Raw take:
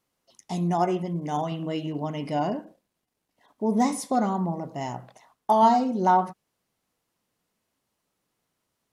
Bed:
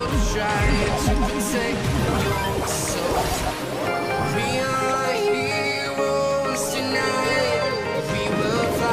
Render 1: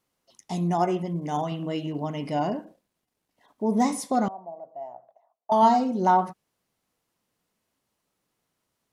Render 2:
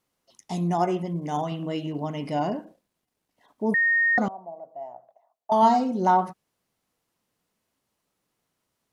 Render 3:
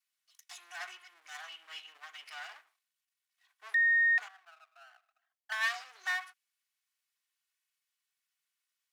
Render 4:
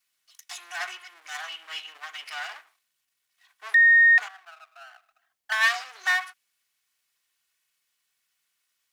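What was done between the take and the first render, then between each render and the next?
4.28–5.52 s: band-pass filter 670 Hz, Q 7.1
3.74–4.18 s: bleep 1.85 kHz -18 dBFS
comb filter that takes the minimum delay 2.7 ms; ladder high-pass 1.3 kHz, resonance 20%
trim +10 dB

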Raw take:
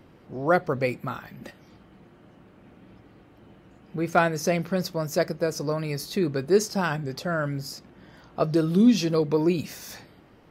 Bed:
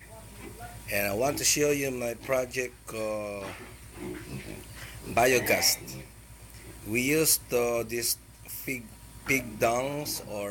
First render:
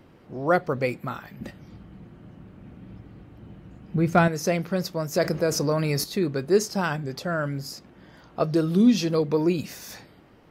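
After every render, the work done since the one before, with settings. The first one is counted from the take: 1.40–4.28 s: tone controls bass +11 dB, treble -1 dB; 5.15–6.04 s: level flattener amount 50%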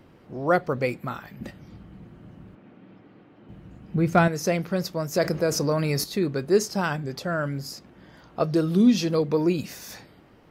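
2.55–3.49 s: band-pass 250–4000 Hz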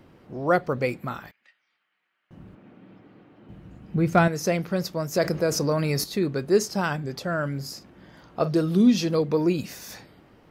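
1.31–2.31 s: ladder band-pass 2.5 kHz, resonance 25%; 7.56–8.62 s: doubling 44 ms -13 dB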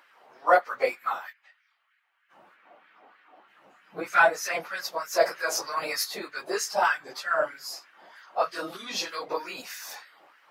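phase randomisation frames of 50 ms; LFO high-pass sine 3.2 Hz 690–1700 Hz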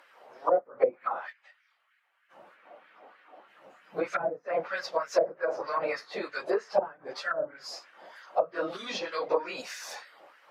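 low-pass that closes with the level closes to 350 Hz, closed at -21.5 dBFS; peaking EQ 540 Hz +7.5 dB 0.59 oct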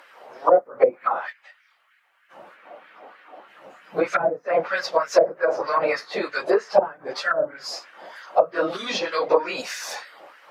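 trim +8.5 dB; peak limiter -3 dBFS, peak gain reduction 1.5 dB

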